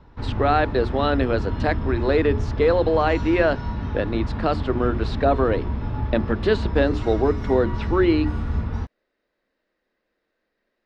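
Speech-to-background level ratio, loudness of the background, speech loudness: 5.5 dB, −28.0 LKFS, −22.5 LKFS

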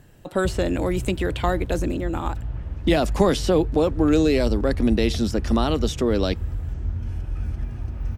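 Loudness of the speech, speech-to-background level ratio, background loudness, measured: −23.0 LKFS, 7.5 dB, −30.5 LKFS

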